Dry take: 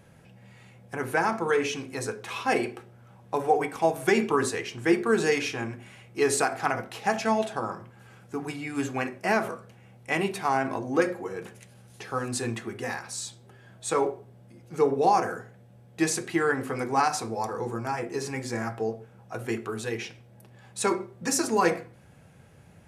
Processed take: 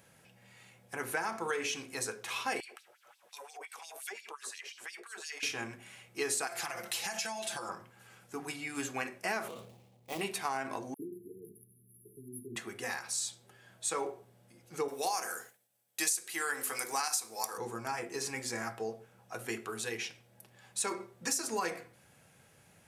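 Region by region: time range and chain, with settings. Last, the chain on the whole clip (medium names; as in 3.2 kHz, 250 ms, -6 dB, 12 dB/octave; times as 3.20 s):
2.60–5.43 s: LFO high-pass sine 5.7 Hz 480–4500 Hz + compression 2.5:1, threshold -45 dBFS
6.47–7.69 s: treble shelf 2.5 kHz +10.5 dB + comb 5.8 ms, depth 99% + compression 8:1, threshold -30 dBFS
9.48–10.21 s: median filter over 25 samples + peaking EQ 1.5 kHz -11.5 dB 0.66 oct + decay stretcher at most 44 dB/s
10.94–12.56 s: phase dispersion lows, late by 54 ms, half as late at 2.3 kHz + compression 1.5:1, threshold -36 dBFS + brick-wall FIR band-stop 450–10000 Hz
14.88–17.58 s: RIAA curve recording + hum notches 50/100/150/200/250/300/350/400/450/500 Hz + expander -52 dBFS
whole clip: tilt EQ +2.5 dB/octave; compression, threshold -25 dBFS; trim -5 dB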